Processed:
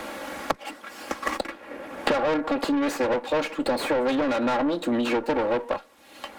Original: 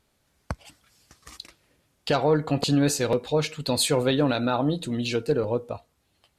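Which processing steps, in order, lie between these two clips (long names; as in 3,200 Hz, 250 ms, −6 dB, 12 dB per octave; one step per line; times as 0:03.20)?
lower of the sound and its delayed copy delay 3.6 ms
three-way crossover with the lows and the highs turned down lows −23 dB, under 240 Hz, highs −14 dB, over 2,400 Hz
in parallel at −0.5 dB: downward compressor, threshold −37 dBFS, peak gain reduction 16.5 dB
on the sum: soft clipping −24.5 dBFS, distortion −9 dB
multiband upward and downward compressor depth 100%
level +5 dB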